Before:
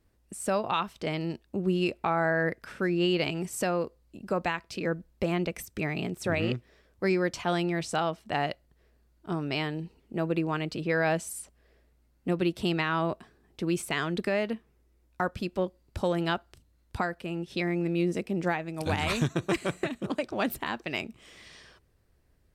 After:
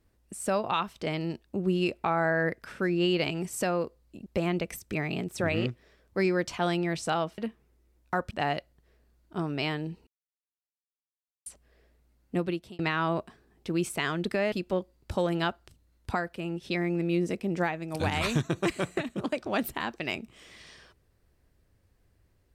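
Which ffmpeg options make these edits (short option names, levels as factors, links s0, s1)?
-filter_complex "[0:a]asplit=8[s0][s1][s2][s3][s4][s5][s6][s7];[s0]atrim=end=4.262[s8];[s1]atrim=start=5.118:end=8.242[s9];[s2]atrim=start=14.448:end=15.382[s10];[s3]atrim=start=8.238:end=10,asetpts=PTS-STARTPTS,afade=t=out:st=1.758:d=0.004:c=hsin[s11];[s4]atrim=start=10:end=11.39,asetpts=PTS-STARTPTS,volume=0[s12];[s5]atrim=start=11.39:end=12.72,asetpts=PTS-STARTPTS,afade=t=in:d=0.004:c=hsin,afade=t=out:st=0.89:d=0.44[s13];[s6]atrim=start=12.72:end=14.452,asetpts=PTS-STARTPTS,afade=t=in:d=0.004:c=hsin[s14];[s7]atrim=start=15.378[s15];[s8][s9]acrossfade=d=0.004:c1=hsin:c2=hsin[s16];[s16][s10]acrossfade=d=0.004:c1=hsin:c2=hsin[s17];[s11][s12][s13][s14]concat=n=4:v=0:a=1[s18];[s17][s18]acrossfade=d=0.004:c1=hsin:c2=hsin[s19];[s19][s15]acrossfade=d=0.004:c1=hsin:c2=hsin"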